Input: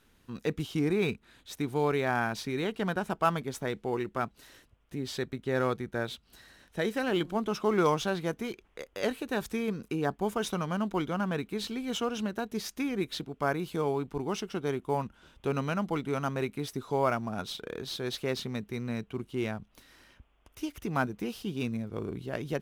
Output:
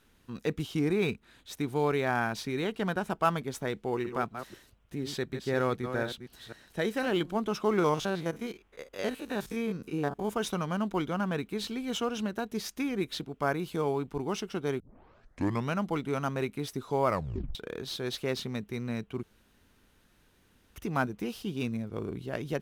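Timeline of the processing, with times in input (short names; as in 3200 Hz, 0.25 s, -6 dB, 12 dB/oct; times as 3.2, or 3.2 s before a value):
3.8–7.07 reverse delay 0.248 s, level -8.5 dB
7.79–10.31 stepped spectrum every 50 ms
14.8 tape start 0.91 s
17.07 tape stop 0.48 s
19.23–20.76 room tone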